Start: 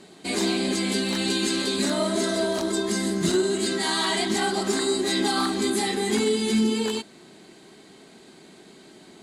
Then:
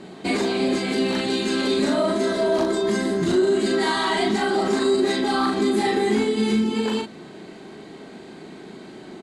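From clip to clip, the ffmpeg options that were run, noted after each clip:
-filter_complex "[0:a]lowpass=f=1.8k:p=1,alimiter=limit=-23dB:level=0:latency=1:release=67,asplit=2[a][b];[b]adelay=38,volume=-4dB[c];[a][c]amix=inputs=2:normalize=0,volume=8.5dB"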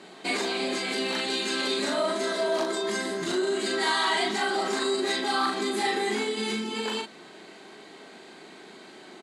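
-af "highpass=f=900:p=1"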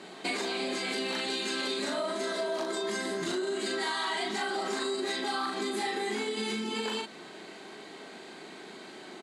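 -af "acompressor=threshold=-31dB:ratio=4,volume=1dB"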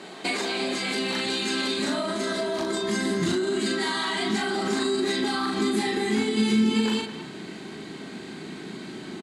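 -filter_complex "[0:a]asubboost=boost=7.5:cutoff=210,asplit=2[a][b];[b]adelay=210,highpass=300,lowpass=3.4k,asoftclip=type=hard:threshold=-26.5dB,volume=-11dB[c];[a][c]amix=inputs=2:normalize=0,volume=5dB"

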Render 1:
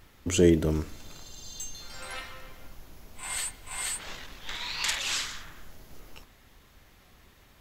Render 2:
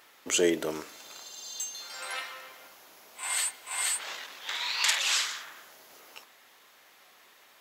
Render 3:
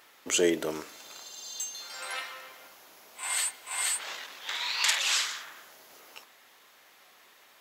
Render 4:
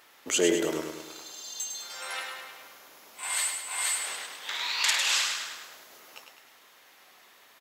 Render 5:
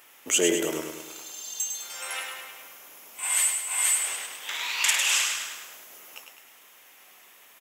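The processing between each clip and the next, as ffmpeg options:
-af "highpass=570,volume=3.5dB"
-af anull
-af "aecho=1:1:103|206|309|412|515|618|721:0.501|0.266|0.141|0.0746|0.0395|0.021|0.0111"
-af "aexciter=amount=1.1:drive=6.3:freq=2.3k"

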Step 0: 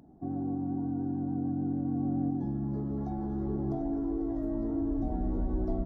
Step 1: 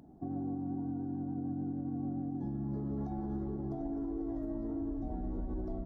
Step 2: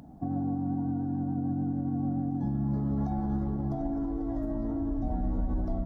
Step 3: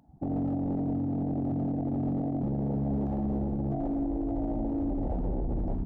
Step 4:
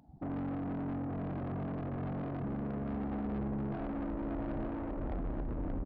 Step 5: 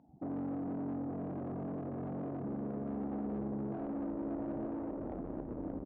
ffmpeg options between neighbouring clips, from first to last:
-af "alimiter=level_in=6dB:limit=-24dB:level=0:latency=1:release=139,volume=-6dB"
-af "equalizer=f=380:t=o:w=0.47:g=-13,volume=9dB"
-af "aeval=exprs='0.0447*(abs(mod(val(0)/0.0447+3,4)-2)-1)':c=same,afwtdn=0.0251,equalizer=f=860:t=o:w=0.39:g=7,volume=2.5dB"
-af "aresample=11025,asoftclip=type=tanh:threshold=-35dB,aresample=44100,aecho=1:1:880:0.398"
-af "bandpass=f=390:t=q:w=0.72:csg=0,volume=1dB"

